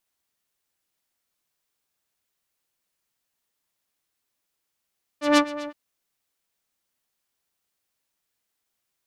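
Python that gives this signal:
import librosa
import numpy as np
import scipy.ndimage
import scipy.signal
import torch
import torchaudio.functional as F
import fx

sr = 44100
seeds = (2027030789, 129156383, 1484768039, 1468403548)

y = fx.sub_patch_wobble(sr, seeds[0], note=74, wave='saw', wave2='saw', interval_st=0, level2_db=-9.0, sub_db=-5.0, noise_db=-10.5, kind='lowpass', cutoff_hz=2100.0, q=0.94, env_oct=0.5, env_decay_s=0.27, env_sustain_pct=40, attack_ms=164.0, decay_s=0.07, sustain_db=-18.5, release_s=0.05, note_s=0.47, lfo_hz=8.0, wobble_oct=1.4)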